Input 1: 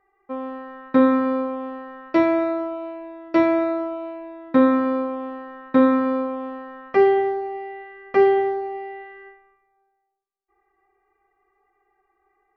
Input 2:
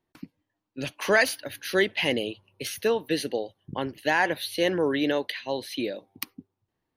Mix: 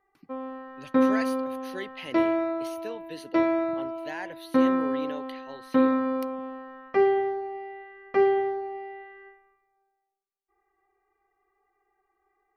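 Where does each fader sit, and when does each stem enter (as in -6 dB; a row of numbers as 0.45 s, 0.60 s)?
-5.5 dB, -14.0 dB; 0.00 s, 0.00 s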